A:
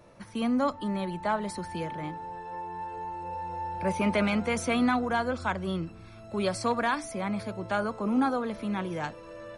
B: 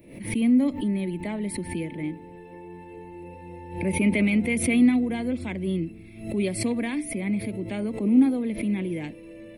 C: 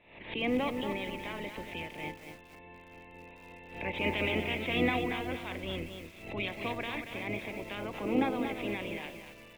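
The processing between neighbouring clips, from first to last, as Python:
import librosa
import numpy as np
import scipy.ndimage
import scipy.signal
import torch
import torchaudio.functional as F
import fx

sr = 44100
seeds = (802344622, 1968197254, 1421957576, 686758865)

y1 = fx.curve_eq(x, sr, hz=(120.0, 300.0, 540.0, 1400.0, 2100.0, 6200.0, 12000.0), db=(0, 10, -4, -21, 6, -14, 13))
y1 = fx.pre_swell(y1, sr, db_per_s=95.0)
y2 = fx.spec_clip(y1, sr, under_db=24)
y2 = scipy.signal.sosfilt(scipy.signal.cheby1(6, 3, 3800.0, 'lowpass', fs=sr, output='sos'), y2)
y2 = fx.echo_crushed(y2, sr, ms=232, feedback_pct=35, bits=7, wet_db=-7)
y2 = y2 * 10.0 ** (-7.5 / 20.0)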